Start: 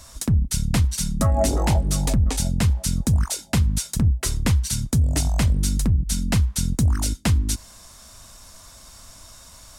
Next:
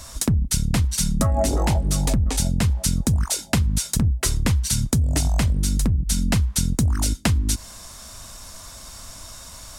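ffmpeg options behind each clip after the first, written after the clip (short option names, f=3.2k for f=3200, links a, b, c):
-af "acompressor=threshold=-22dB:ratio=6,volume=5.5dB"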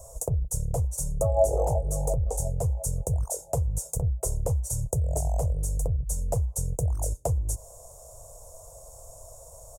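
-af "firequalizer=gain_entry='entry(140,0);entry(220,-26);entry(470,12);entry(670,8);entry(1200,-14);entry(1700,-29);entry(4000,-28);entry(6700,-1)':delay=0.05:min_phase=1,volume=-6dB"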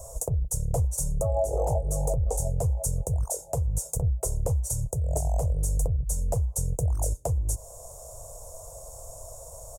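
-af "alimiter=limit=-20.5dB:level=0:latency=1:release=381,volume=4dB"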